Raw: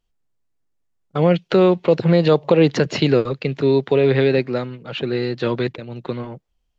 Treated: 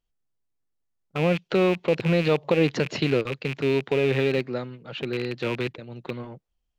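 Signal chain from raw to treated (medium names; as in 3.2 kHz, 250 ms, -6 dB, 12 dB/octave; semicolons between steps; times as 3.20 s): rattle on loud lows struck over -25 dBFS, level -14 dBFS; trim -7 dB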